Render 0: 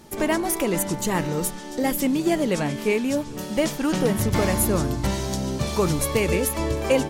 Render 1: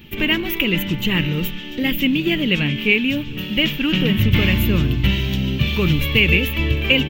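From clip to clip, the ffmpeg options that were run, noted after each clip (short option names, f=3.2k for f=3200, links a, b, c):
-af "firequalizer=gain_entry='entry(120,0);entry(690,-19);entry(2800,11);entry(4600,-14);entry(9900,-30);entry(15000,4)':delay=0.05:min_phase=1,volume=8.5dB"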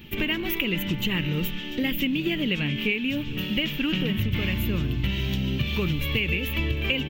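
-af "acompressor=threshold=-20dB:ratio=6,volume=-2dB"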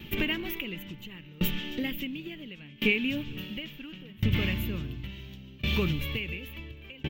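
-af "aeval=exprs='val(0)*pow(10,-26*if(lt(mod(0.71*n/s,1),2*abs(0.71)/1000),1-mod(0.71*n/s,1)/(2*abs(0.71)/1000),(mod(0.71*n/s,1)-2*abs(0.71)/1000)/(1-2*abs(0.71)/1000))/20)':c=same,volume=2dB"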